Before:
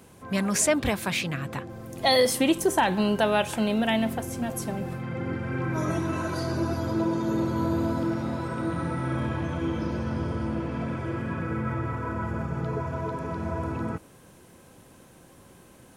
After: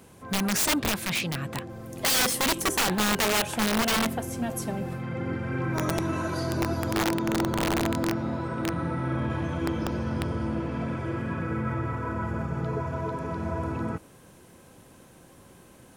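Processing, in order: 7.04–9.3 LPF 3600 Hz 6 dB/oct; wrapped overs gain 18.5 dB

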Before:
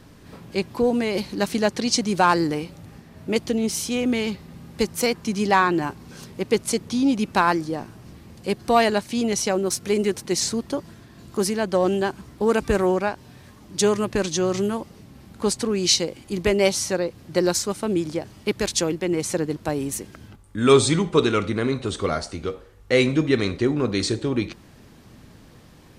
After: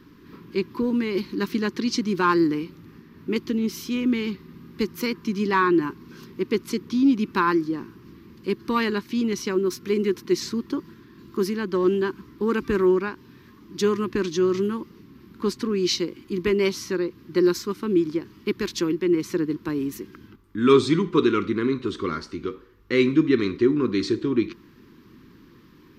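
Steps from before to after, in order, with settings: EQ curve 100 Hz 0 dB, 360 Hz +13 dB, 700 Hz -17 dB, 1000 Hz +8 dB, 5200 Hz +2 dB, 9200 Hz -12 dB, 13000 Hz +6 dB; 10.64–11.39 crackle 68/s -51 dBFS; gain -8.5 dB

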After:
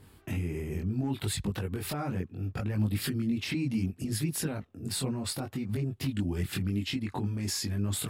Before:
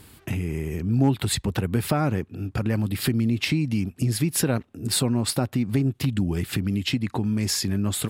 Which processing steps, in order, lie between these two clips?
limiter -17.5 dBFS, peak gain reduction 8.5 dB; chorus voices 2, 0.69 Hz, delay 21 ms, depth 1.9 ms; mismatched tape noise reduction decoder only; gain -2 dB

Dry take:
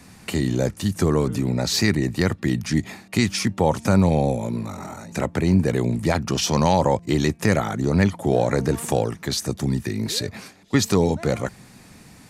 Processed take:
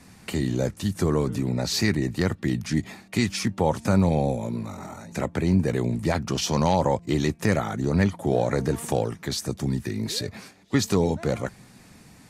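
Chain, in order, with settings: high shelf 4700 Hz -2.5 dB; gain -3 dB; Vorbis 48 kbps 48000 Hz

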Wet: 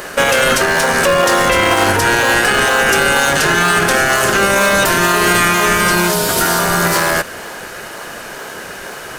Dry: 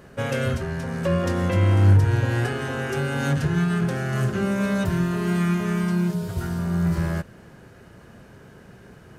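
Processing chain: HPF 710 Hz 12 dB/oct; high shelf 4700 Hz +7 dB; in parallel at -9 dB: decimation with a swept rate 29×, swing 100% 2.1 Hz; on the sum: maximiser +26.5 dB; gain -2.5 dB

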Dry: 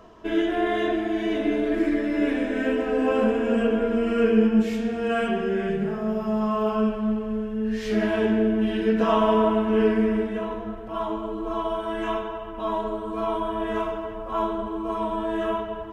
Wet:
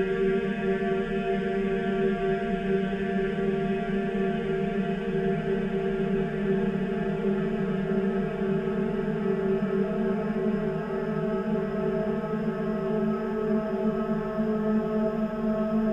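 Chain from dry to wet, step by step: Paulstretch 41×, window 0.50 s, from 5.65; de-hum 97.74 Hz, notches 27

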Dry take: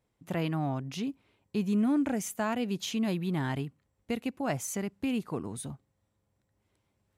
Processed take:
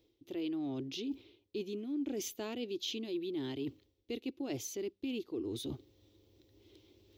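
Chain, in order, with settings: EQ curve 110 Hz 0 dB, 170 Hz -15 dB, 340 Hz +15 dB, 640 Hz -5 dB, 1000 Hz -9 dB, 1600 Hz -10 dB, 3500 Hz +11 dB, 6100 Hz +3 dB, 8900 Hz -14 dB, 15000 Hz +6 dB; reverse; compressor 5:1, threshold -48 dBFS, peak gain reduction 27.5 dB; reverse; gain +9 dB

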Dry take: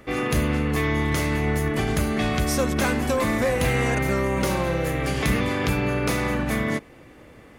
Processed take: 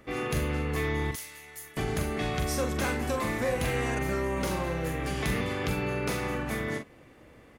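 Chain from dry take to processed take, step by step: 1.11–1.77 pre-emphasis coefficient 0.97; doubler 43 ms -7 dB; gain -7 dB

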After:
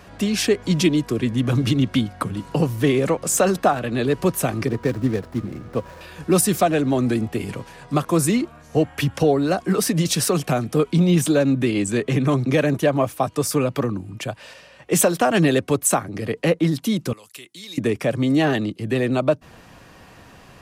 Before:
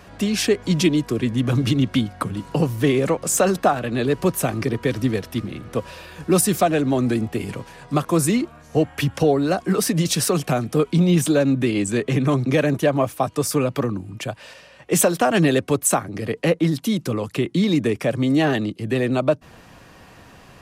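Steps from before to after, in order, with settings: 4.67–6.01 median filter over 15 samples; 17.13–17.78 pre-emphasis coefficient 0.97

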